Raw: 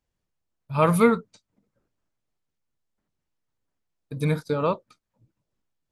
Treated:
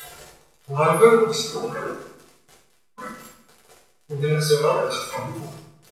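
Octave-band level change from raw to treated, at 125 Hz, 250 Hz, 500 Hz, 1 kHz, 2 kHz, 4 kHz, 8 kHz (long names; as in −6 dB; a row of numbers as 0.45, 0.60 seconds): +1.5, −2.5, +7.0, +4.5, +5.5, +14.5, +12.0 decibels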